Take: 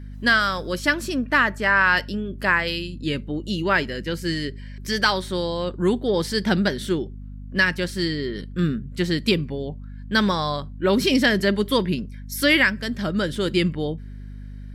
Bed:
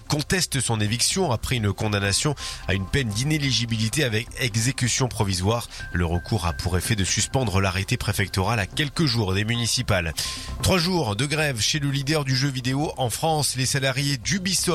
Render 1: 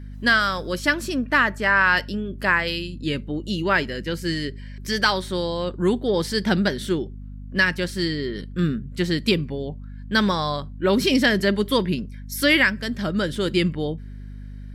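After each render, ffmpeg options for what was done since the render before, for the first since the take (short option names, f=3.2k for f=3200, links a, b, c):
-af anull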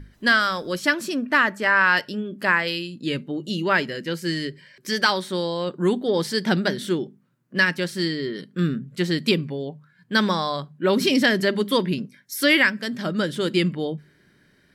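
-af "bandreject=f=50:t=h:w=6,bandreject=f=100:t=h:w=6,bandreject=f=150:t=h:w=6,bandreject=f=200:t=h:w=6,bandreject=f=250:t=h:w=6"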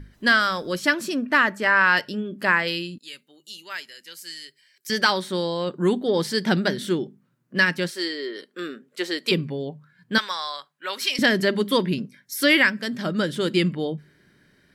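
-filter_complex "[0:a]asettb=1/sr,asplit=3[a][b][c];[a]atrim=end=2.984[d];[b]atrim=start=2.98:end=4.9,asetpts=PTS-STARTPTS,afade=t=in:d=0.004:c=qsin,afade=t=out:st=1.916:d=0.004:c=qsin,aderivative[e];[c]atrim=start=4.896[f];[d][e]acrossfade=d=0.004:c1=hsin:c2=qsin[g];[g][f]acrossfade=d=0.004:c1=qsin:c2=hsin,asplit=3[h][i][j];[h]afade=t=out:st=7.89:d=0.02[k];[i]highpass=f=360:w=0.5412,highpass=f=360:w=1.3066,afade=t=in:st=7.89:d=0.02,afade=t=out:st=9.3:d=0.02[l];[j]afade=t=in:st=9.3:d=0.02[m];[k][l][m]amix=inputs=3:normalize=0,asettb=1/sr,asplit=3[n][o][p];[n]atrim=end=10.184[q];[o]atrim=start=10.18:end=11.19,asetpts=PTS-STARTPTS,afade=t=in:d=0.004:c=qsin,afade=t=out:st=1.006:d=0.004:c=qsin,highpass=1.2k[r];[p]atrim=start=11.186[s];[q][r]acrossfade=d=0.004:c1=hsin:c2=qsin[t];[t][s]acrossfade=d=0.004:c1=qsin:c2=hsin"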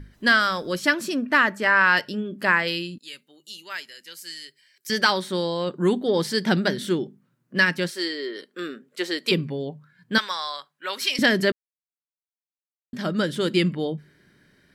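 -filter_complex "[0:a]asplit=3[a][b][c];[a]atrim=end=11.52,asetpts=PTS-STARTPTS,afade=t=out:st=11.516:d=0.004:c=hsin[d];[b]atrim=start=11.52:end=12.93,asetpts=PTS-STARTPTS,volume=0[e];[c]atrim=start=12.93,asetpts=PTS-STARTPTS,afade=t=in:d=0.004:c=hsin[f];[d][e][f]concat=n=3:v=0:a=1"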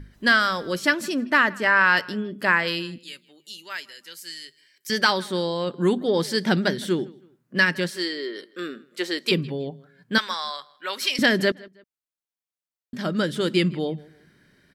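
-filter_complex "[0:a]asplit=2[a][b];[b]adelay=160,lowpass=f=4.4k:p=1,volume=-22.5dB,asplit=2[c][d];[d]adelay=160,lowpass=f=4.4k:p=1,volume=0.34[e];[a][c][e]amix=inputs=3:normalize=0"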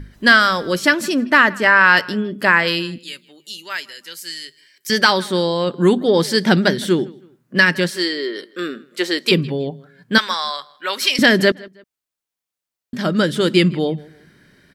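-af "volume=7dB,alimiter=limit=-1dB:level=0:latency=1"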